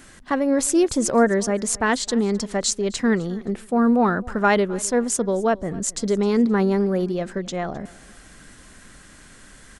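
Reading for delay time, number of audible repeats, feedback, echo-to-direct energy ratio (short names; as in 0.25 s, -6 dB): 0.261 s, 2, 28%, -21.5 dB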